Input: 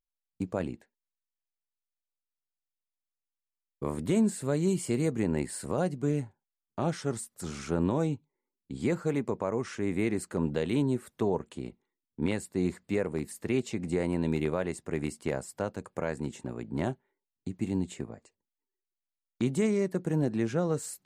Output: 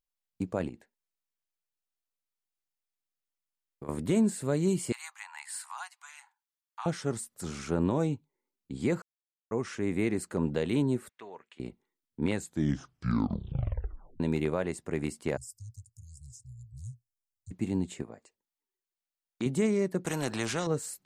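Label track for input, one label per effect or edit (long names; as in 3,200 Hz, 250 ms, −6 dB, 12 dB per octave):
0.680000	3.890000	downward compressor, threshold −38 dBFS
4.920000	6.860000	Butterworth high-pass 840 Hz 72 dB per octave
9.020000	9.510000	silence
11.090000	11.600000	resonant band-pass 2,200 Hz, Q 1.7
12.320000	12.320000	tape stop 1.88 s
15.370000	17.510000	Chebyshev band-stop filter 120–5,100 Hz, order 5
18.020000	19.460000	low-shelf EQ 190 Hz −11 dB
20.050000	20.670000	every bin compressed towards the loudest bin 2 to 1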